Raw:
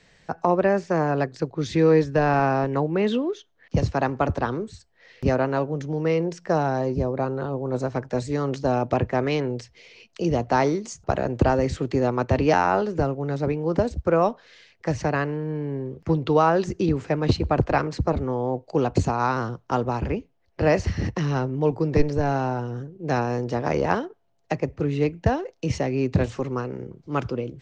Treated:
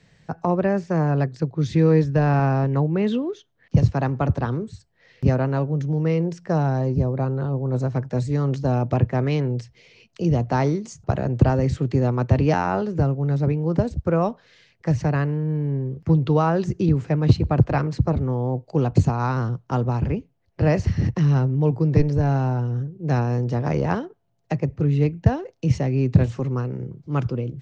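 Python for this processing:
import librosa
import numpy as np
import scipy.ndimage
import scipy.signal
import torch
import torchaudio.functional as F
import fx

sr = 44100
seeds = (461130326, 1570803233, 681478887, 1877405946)

y = fx.peak_eq(x, sr, hz=130.0, db=12.0, octaves=1.5)
y = y * librosa.db_to_amplitude(-3.5)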